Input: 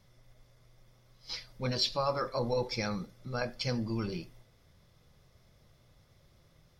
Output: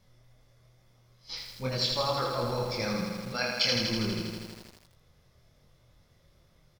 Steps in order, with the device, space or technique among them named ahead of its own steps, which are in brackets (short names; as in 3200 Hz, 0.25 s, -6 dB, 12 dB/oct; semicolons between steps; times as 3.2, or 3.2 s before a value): double-tracked vocal (doubler 27 ms -12 dB; chorus 2.3 Hz, depth 2.8 ms); 3.32–3.76 weighting filter D; lo-fi delay 81 ms, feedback 80%, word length 9-bit, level -4 dB; gain +3 dB